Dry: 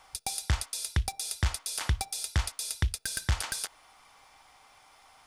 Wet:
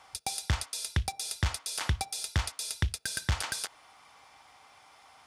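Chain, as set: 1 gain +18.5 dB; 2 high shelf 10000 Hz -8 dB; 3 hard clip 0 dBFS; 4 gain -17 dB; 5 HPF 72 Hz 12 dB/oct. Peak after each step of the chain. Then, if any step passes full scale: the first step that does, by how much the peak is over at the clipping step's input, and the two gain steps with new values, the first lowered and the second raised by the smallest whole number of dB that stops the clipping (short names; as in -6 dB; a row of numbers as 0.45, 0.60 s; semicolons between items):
+5.0, +4.5, 0.0, -17.0, -16.5 dBFS; step 1, 4.5 dB; step 1 +13.5 dB, step 4 -12 dB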